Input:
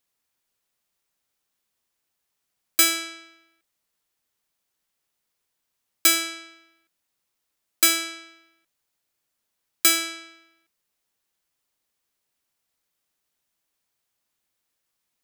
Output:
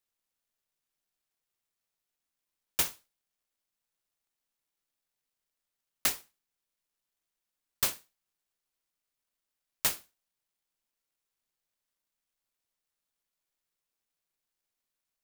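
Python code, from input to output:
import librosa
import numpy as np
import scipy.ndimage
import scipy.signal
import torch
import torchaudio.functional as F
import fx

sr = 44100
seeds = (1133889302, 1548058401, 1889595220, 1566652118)

y = scipy.signal.sosfilt(scipy.signal.cheby2(4, 80, [150.0, 5500.0], 'bandstop', fs=sr, output='sos'), x)
y = fx.noise_mod_delay(y, sr, seeds[0], noise_hz=1800.0, depth_ms=0.18)
y = y * 10.0 ** (1.5 / 20.0)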